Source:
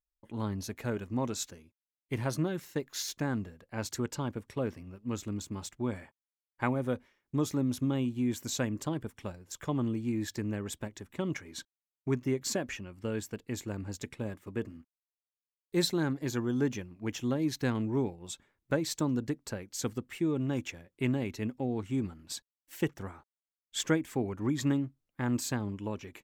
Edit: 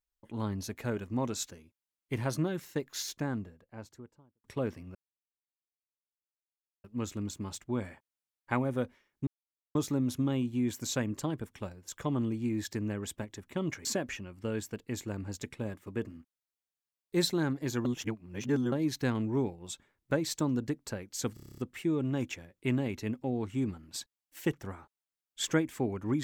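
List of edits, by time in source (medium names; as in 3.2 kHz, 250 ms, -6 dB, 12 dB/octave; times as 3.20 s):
2.87–4.44 s: studio fade out
4.95 s: insert silence 1.89 s
7.38 s: insert silence 0.48 s
11.48–12.45 s: delete
16.45–17.32 s: reverse
19.94 s: stutter 0.03 s, 9 plays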